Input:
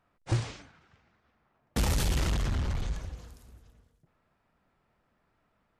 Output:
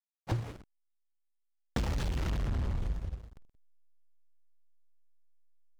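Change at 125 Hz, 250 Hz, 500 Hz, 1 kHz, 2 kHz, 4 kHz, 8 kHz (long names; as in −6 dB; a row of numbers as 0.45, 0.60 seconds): −3.5, −3.0, −3.5, −4.0, −6.0, −8.5, −13.0 decibels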